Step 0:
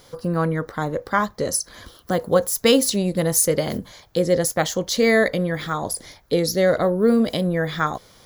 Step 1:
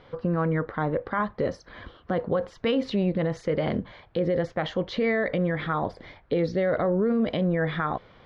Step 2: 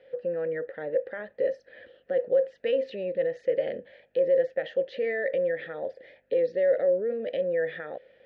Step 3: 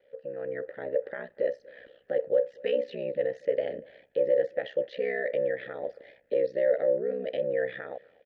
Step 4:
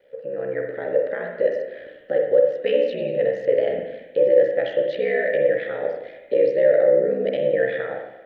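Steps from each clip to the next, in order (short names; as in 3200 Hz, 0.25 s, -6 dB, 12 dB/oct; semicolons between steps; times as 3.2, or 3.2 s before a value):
LPF 2900 Hz 24 dB/oct; limiter -16.5 dBFS, peak gain reduction 11.5 dB
hum 50 Hz, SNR 27 dB; vowel filter e; tone controls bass -1 dB, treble +5 dB; gain +5.5 dB
AGC gain up to 7.5 dB; ring modulator 32 Hz; outdoor echo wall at 41 m, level -25 dB; gain -6 dB
reverb RT60 1.0 s, pre-delay 39 ms, DRR 2 dB; gain +6.5 dB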